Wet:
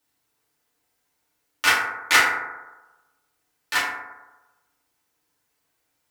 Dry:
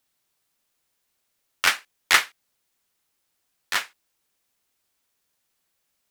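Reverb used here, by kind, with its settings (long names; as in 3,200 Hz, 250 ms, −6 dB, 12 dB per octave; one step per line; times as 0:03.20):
feedback delay network reverb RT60 1.1 s, low-frequency decay 0.85×, high-frequency decay 0.3×, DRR −8 dB
level −4.5 dB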